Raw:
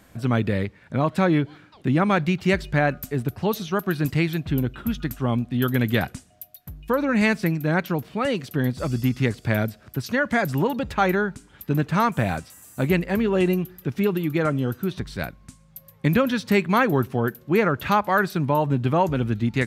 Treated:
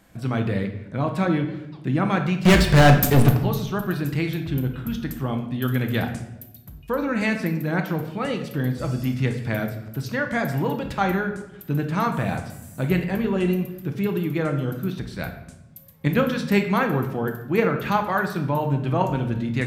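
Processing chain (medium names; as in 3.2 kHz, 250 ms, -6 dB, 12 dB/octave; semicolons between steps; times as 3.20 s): in parallel at -3 dB: level held to a coarse grid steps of 17 dB; 2.45–3.37 s: on the sum: waveshaping leveller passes 5; simulated room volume 330 m³, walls mixed, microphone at 0.67 m; trim -5 dB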